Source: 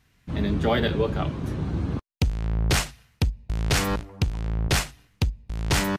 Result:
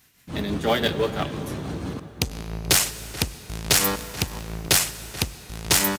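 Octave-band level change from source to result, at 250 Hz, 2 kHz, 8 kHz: -1.5, +2.5, +10.0 dB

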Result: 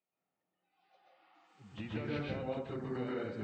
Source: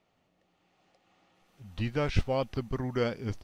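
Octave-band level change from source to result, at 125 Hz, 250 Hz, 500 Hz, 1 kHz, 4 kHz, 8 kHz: -10.5 dB, -5.0 dB, -7.5 dB, -8.5 dB, -9.5 dB, under -15 dB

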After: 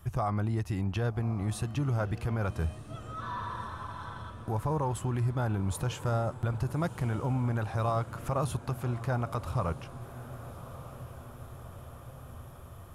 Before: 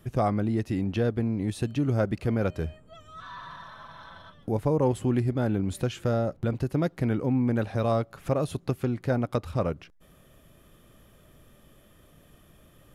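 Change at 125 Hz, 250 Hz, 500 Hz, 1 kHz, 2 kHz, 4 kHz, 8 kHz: -1.0, -8.0, -7.5, 0.0, -1.5, -2.5, +2.0 dB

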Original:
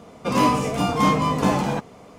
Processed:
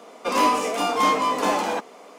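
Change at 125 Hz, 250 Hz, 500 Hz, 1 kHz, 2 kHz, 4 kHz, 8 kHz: under -15 dB, -7.0 dB, 0.0 dB, +1.0 dB, +1.5 dB, +2.0 dB, +2.0 dB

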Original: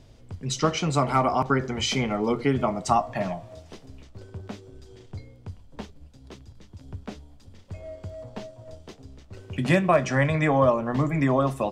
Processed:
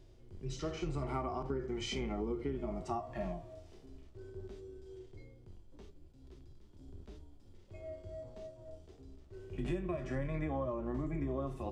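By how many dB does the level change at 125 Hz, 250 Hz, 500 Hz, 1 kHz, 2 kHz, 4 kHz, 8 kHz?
-14.0, -13.0, -14.0, -18.0, -20.0, -15.5, -18.5 dB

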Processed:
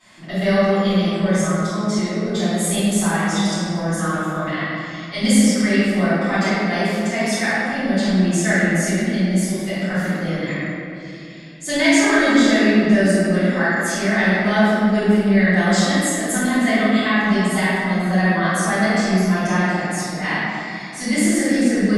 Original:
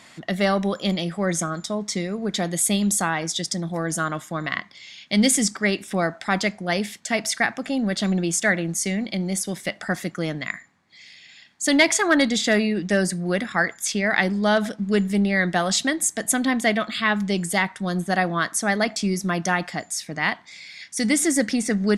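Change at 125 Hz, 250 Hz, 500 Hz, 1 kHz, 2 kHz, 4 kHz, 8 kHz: +7.0, +6.5, +4.5, +3.5, +4.0, +1.0, -1.0 dB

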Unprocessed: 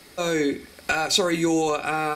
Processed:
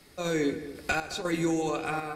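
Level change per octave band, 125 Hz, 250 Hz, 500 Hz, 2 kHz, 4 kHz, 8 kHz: -2.5, -5.0, -6.0, -6.0, -13.0, -11.0 dB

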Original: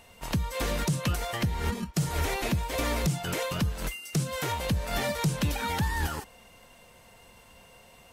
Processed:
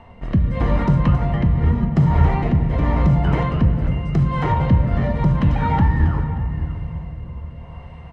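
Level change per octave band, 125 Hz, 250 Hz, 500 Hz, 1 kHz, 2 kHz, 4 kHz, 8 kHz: +14.5 dB, +12.5 dB, +6.0 dB, +9.0 dB, +2.0 dB, n/a, under -20 dB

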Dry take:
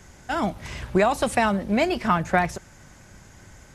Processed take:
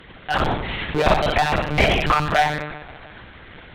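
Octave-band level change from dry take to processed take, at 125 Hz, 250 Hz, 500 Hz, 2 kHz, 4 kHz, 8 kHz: +5.5, -2.0, +2.0, +6.0, +10.0, -2.0 dB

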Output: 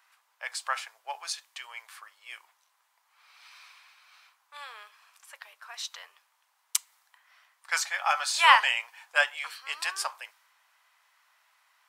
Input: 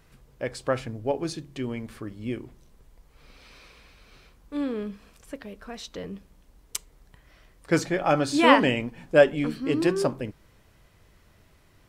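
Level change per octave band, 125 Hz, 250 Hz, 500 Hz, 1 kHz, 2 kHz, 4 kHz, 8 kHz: under -40 dB, under -40 dB, -19.5 dB, +0.5 dB, +2.5 dB, +3.5 dB, +5.5 dB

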